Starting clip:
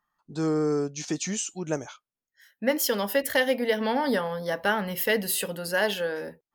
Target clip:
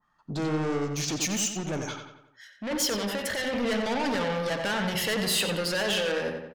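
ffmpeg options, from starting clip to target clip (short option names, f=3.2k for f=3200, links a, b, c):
-filter_complex "[0:a]lowpass=6k,equalizer=f=110:w=0.6:g=4,alimiter=limit=-22dB:level=0:latency=1:release=29,acontrast=23,asoftclip=type=tanh:threshold=-30dB,asettb=1/sr,asplit=3[a][b][c];[a]atrim=end=0.774[d];[b]atrim=start=0.77:end=3.53,asetpts=PTS-STARTPTS,afade=t=in:d=0.004:c=qsin,afade=t=out:st=2.756:d=0.004:c=qsin,acrossover=split=2000[e][f];[e]aeval=exprs='val(0)*(1-0.5/2+0.5/2*cos(2*PI*5.1*n/s))':c=same[g];[f]aeval=exprs='val(0)*(1-0.5/2-0.5/2*cos(2*PI*5.1*n/s))':c=same[h];[g][h]amix=inputs=2:normalize=0[i];[c]atrim=start=3.526[j];[d][i]acrossfade=d=0.004:c1=hsin:c2=qsin[k];[k][j]acrossfade=d=0.004:c1=qsin:c2=hsin,asplit=2[l][m];[m]adelay=90,lowpass=f=3.8k:p=1,volume=-5.5dB,asplit=2[n][o];[o]adelay=90,lowpass=f=3.8k:p=1,volume=0.51,asplit=2[p][q];[q]adelay=90,lowpass=f=3.8k:p=1,volume=0.51,asplit=2[r][s];[s]adelay=90,lowpass=f=3.8k:p=1,volume=0.51,asplit=2[t][u];[u]adelay=90,lowpass=f=3.8k:p=1,volume=0.51,asplit=2[v][w];[w]adelay=90,lowpass=f=3.8k:p=1,volume=0.51[x];[l][n][p][r][t][v][x]amix=inputs=7:normalize=0,adynamicequalizer=threshold=0.00316:dfrequency=1700:dqfactor=0.7:tfrequency=1700:tqfactor=0.7:attack=5:release=100:ratio=0.375:range=2.5:mode=boostabove:tftype=highshelf,volume=3dB"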